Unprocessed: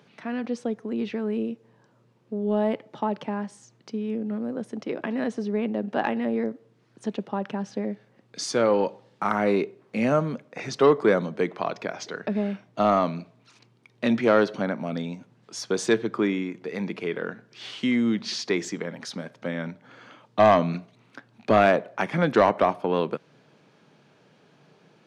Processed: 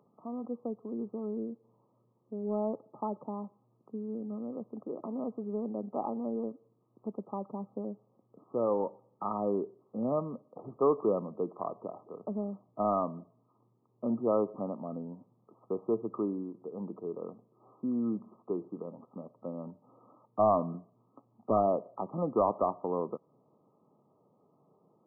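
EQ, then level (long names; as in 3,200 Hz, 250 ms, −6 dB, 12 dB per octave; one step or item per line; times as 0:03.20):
linear-phase brick-wall low-pass 1,300 Hz
parametric band 150 Hz −4.5 dB 0.51 octaves
−8.0 dB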